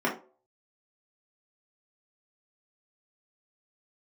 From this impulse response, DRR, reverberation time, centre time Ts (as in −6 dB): −5.0 dB, 0.40 s, 22 ms